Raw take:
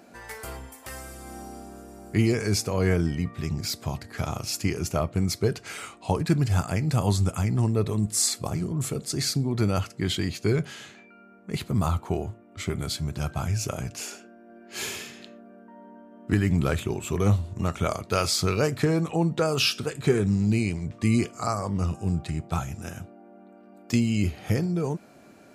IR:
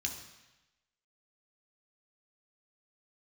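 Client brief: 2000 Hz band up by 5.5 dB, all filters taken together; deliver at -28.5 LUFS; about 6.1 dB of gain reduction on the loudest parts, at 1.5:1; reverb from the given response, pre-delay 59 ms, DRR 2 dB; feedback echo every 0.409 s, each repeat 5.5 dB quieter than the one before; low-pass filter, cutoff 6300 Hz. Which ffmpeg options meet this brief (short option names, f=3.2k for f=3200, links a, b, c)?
-filter_complex "[0:a]lowpass=6.3k,equalizer=f=2k:t=o:g=7,acompressor=threshold=-34dB:ratio=1.5,aecho=1:1:409|818|1227|1636|2045|2454|2863:0.531|0.281|0.149|0.079|0.0419|0.0222|0.0118,asplit=2[a][b];[1:a]atrim=start_sample=2205,adelay=59[c];[b][c]afir=irnorm=-1:irlink=0,volume=-3.5dB[d];[a][d]amix=inputs=2:normalize=0,volume=-1dB"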